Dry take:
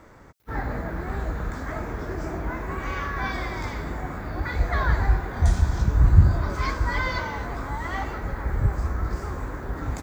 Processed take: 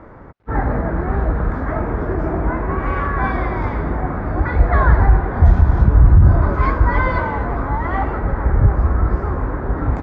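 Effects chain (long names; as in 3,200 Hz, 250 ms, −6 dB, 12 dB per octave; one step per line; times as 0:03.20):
low-pass filter 1,400 Hz 12 dB per octave
boost into a limiter +11.5 dB
level −1 dB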